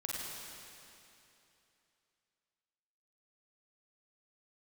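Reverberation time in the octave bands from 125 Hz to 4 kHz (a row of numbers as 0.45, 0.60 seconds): 2.9, 2.9, 2.9, 2.9, 2.9, 2.8 seconds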